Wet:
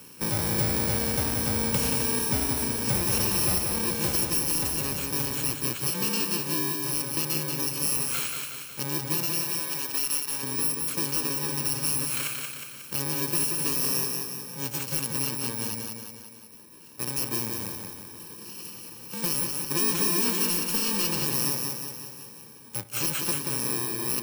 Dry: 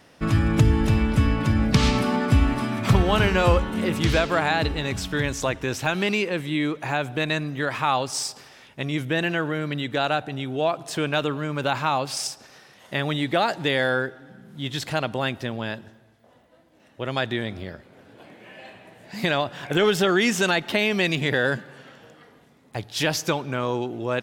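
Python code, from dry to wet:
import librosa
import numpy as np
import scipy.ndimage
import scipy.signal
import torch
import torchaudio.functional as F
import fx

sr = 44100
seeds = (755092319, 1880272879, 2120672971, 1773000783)

y = fx.bit_reversed(x, sr, seeds[0], block=64)
y = fx.highpass(y, sr, hz=fx.steps((0.0, 150.0), (9.26, 1200.0), (10.43, 160.0)), slope=6)
y = np.clip(y, -10.0 ** (-15.0 / 20.0), 10.0 ** (-15.0 / 20.0))
y = fx.echo_feedback(y, sr, ms=181, feedback_pct=45, wet_db=-5.0)
y = fx.band_squash(y, sr, depth_pct=40)
y = y * 10.0 ** (-4.0 / 20.0)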